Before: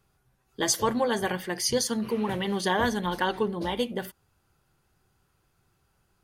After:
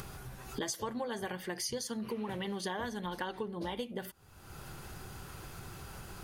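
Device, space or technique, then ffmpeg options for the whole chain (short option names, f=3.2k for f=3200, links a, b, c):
upward and downward compression: -af "acompressor=mode=upward:threshold=-31dB:ratio=2.5,acompressor=threshold=-38dB:ratio=6,volume=2.5dB"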